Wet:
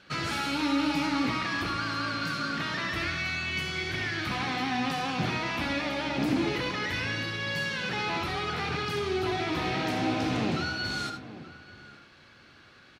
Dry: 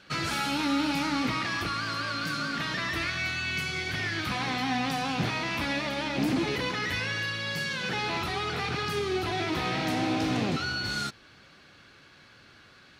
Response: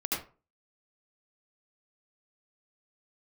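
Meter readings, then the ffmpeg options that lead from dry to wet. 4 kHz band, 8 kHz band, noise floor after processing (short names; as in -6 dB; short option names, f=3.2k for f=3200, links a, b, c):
-1.0 dB, -3.0 dB, -55 dBFS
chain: -filter_complex "[0:a]highshelf=f=7.5k:g=-6,asplit=2[a][b];[b]adelay=874.6,volume=-15dB,highshelf=f=4k:g=-19.7[c];[a][c]amix=inputs=2:normalize=0,asplit=2[d][e];[1:a]atrim=start_sample=2205,asetrate=48510,aresample=44100[f];[e][f]afir=irnorm=-1:irlink=0,volume=-9dB[g];[d][g]amix=inputs=2:normalize=0,volume=-3dB"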